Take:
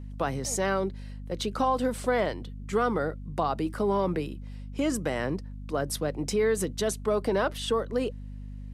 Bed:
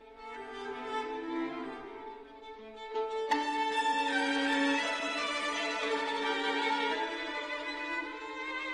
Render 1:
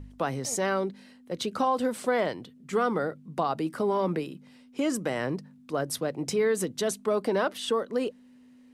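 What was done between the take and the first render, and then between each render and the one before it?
hum removal 50 Hz, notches 4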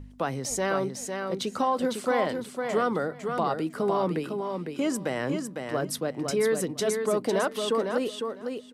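repeating echo 504 ms, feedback 16%, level −5.5 dB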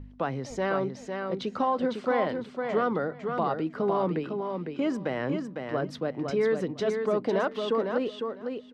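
high-frequency loss of the air 210 metres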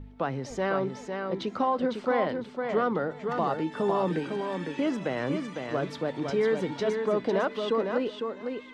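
mix in bed −12.5 dB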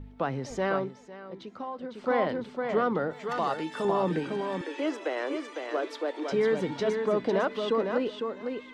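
0:00.75–0:02.12: duck −11 dB, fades 0.19 s
0:03.13–0:03.85: spectral tilt +2.5 dB per octave
0:04.61–0:06.32: Butterworth high-pass 300 Hz 48 dB per octave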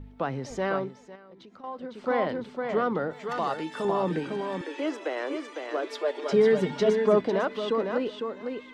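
0:01.15–0:01.64: downward compressor 4 to 1, threshold −47 dBFS
0:05.89–0:07.21: comb filter 4.9 ms, depth 100%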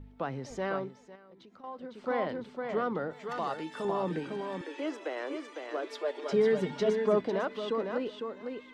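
level −5 dB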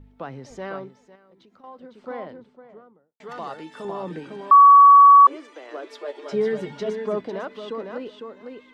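0:01.65–0:03.20: fade out and dull
0:04.51–0:05.27: beep over 1,130 Hz −6.5 dBFS
0:06.00–0:06.79: double-tracking delay 14 ms −7.5 dB

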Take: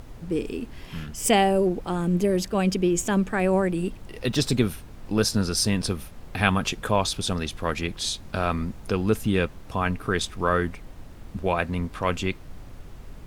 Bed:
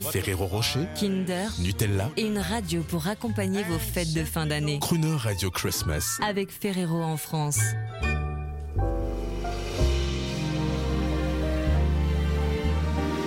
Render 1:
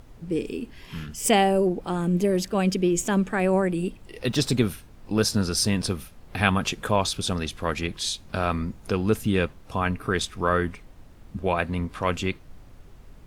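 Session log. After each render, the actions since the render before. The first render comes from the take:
noise reduction from a noise print 6 dB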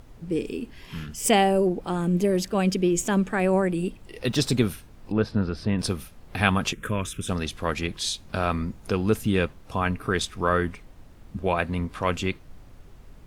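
0:05.12–0:05.79: high-frequency loss of the air 420 metres
0:06.73–0:07.29: phaser with its sweep stopped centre 1,900 Hz, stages 4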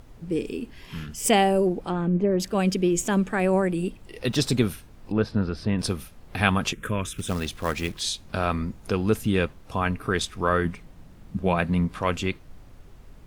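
0:01.82–0:02.40: treble cut that deepens with the level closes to 1,600 Hz, closed at −20.5 dBFS
0:07.15–0:08.01: floating-point word with a short mantissa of 2 bits
0:10.65–0:11.98: parametric band 170 Hz +8 dB 0.61 octaves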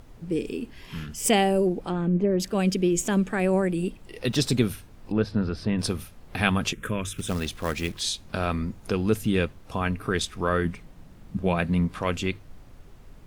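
mains-hum notches 50/100 Hz
dynamic equaliser 1,000 Hz, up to −4 dB, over −34 dBFS, Q 0.98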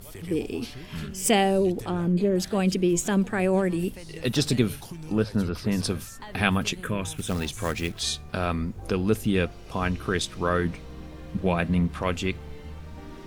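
mix in bed −15.5 dB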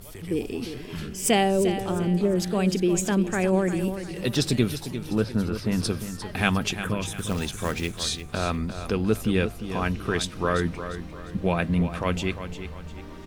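repeating echo 351 ms, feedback 38%, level −10.5 dB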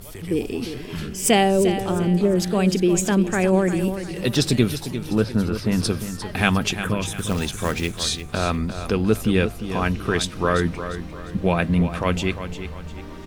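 level +4 dB
brickwall limiter −2 dBFS, peak gain reduction 1 dB

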